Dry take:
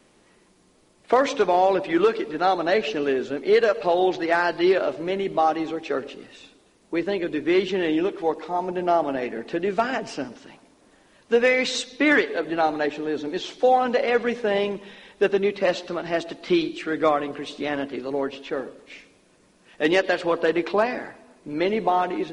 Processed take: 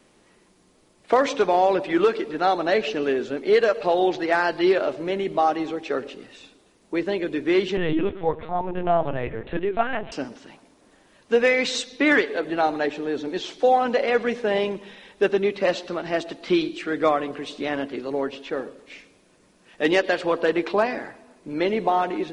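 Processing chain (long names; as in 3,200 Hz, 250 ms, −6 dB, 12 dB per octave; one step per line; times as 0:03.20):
0:07.77–0:10.12: linear-prediction vocoder at 8 kHz pitch kept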